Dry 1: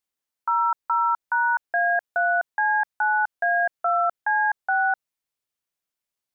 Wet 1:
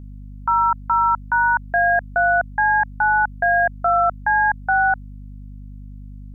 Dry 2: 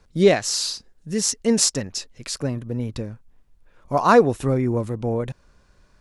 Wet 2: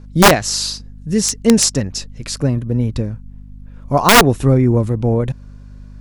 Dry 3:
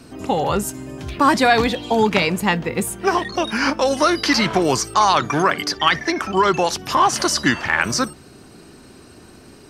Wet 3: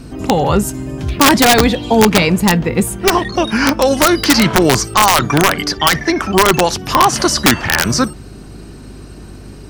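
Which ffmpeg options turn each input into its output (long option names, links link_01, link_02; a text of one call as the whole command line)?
ffmpeg -i in.wav -af "lowshelf=frequency=270:gain=8,aeval=exprs='val(0)+0.0112*(sin(2*PI*50*n/s)+sin(2*PI*2*50*n/s)/2+sin(2*PI*3*50*n/s)/3+sin(2*PI*4*50*n/s)/4+sin(2*PI*5*50*n/s)/5)':channel_layout=same,aeval=exprs='(mod(1.88*val(0)+1,2)-1)/1.88':channel_layout=same,volume=4dB" out.wav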